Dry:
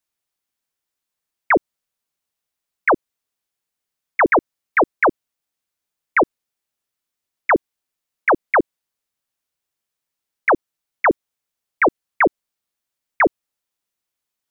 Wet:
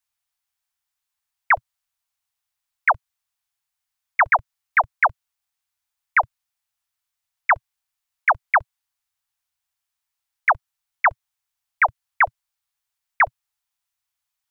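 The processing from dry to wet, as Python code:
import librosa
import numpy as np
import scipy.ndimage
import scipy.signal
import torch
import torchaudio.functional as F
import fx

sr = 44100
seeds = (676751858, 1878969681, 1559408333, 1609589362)

y = scipy.signal.sosfilt(scipy.signal.cheby2(4, 40, [180.0, 470.0], 'bandstop', fs=sr, output='sos'), x)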